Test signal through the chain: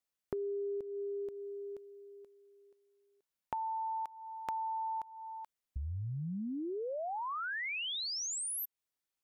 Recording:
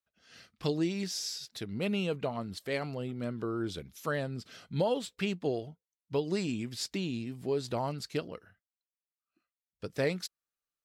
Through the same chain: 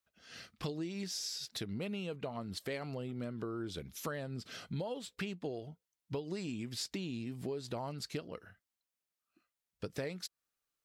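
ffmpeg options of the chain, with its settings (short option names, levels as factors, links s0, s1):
-af "acompressor=threshold=0.00891:ratio=6,volume=1.58"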